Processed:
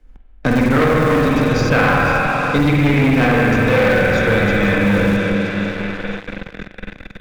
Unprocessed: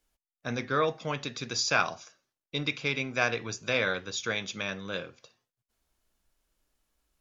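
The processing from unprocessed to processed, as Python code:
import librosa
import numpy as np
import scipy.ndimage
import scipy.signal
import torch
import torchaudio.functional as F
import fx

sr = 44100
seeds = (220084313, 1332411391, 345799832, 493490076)

p1 = fx.tilt_eq(x, sr, slope=-4.5)
p2 = fx.hum_notches(p1, sr, base_hz=60, count=4)
p3 = p2 + 0.33 * np.pad(p2, (int(3.9 * sr / 1000.0), 0))[:len(p2)]
p4 = fx.echo_wet_highpass(p3, sr, ms=489, feedback_pct=45, hz=2000.0, wet_db=-12)
p5 = fx.rev_spring(p4, sr, rt60_s=2.8, pass_ms=(45, 49), chirp_ms=40, drr_db=-5.5)
p6 = fx.schmitt(p5, sr, flips_db=-19.5)
p7 = p5 + (p6 * 10.0 ** (-8.0 / 20.0))
p8 = fx.leveller(p7, sr, passes=3)
p9 = fx.peak_eq(p8, sr, hz=1900.0, db=6.5, octaves=0.99)
p10 = fx.band_squash(p9, sr, depth_pct=70)
y = p10 * 10.0 ** (-3.5 / 20.0)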